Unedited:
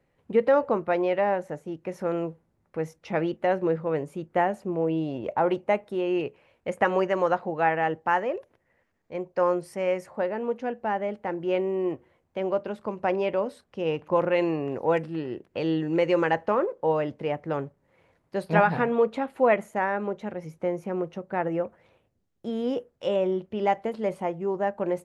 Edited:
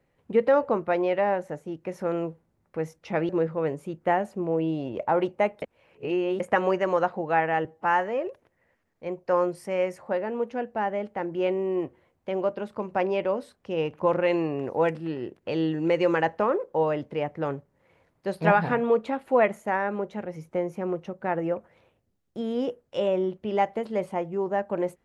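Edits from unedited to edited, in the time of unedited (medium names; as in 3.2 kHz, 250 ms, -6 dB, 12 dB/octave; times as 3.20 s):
3.29–3.58 s: delete
5.91–6.69 s: reverse
7.94–8.35 s: stretch 1.5×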